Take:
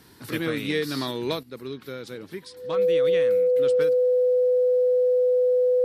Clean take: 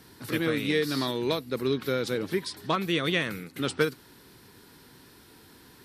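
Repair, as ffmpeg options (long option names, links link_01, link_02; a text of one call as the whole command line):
ffmpeg -i in.wav -af "bandreject=frequency=500:width=30,asetnsamples=nb_out_samples=441:pad=0,asendcmd='1.43 volume volume 8dB',volume=0dB" out.wav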